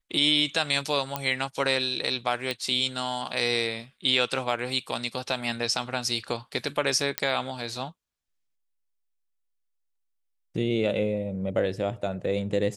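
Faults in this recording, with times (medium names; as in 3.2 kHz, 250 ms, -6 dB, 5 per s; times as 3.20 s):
1.16 s: pop -11 dBFS
2.51 s: pop
7.18 s: pop -6 dBFS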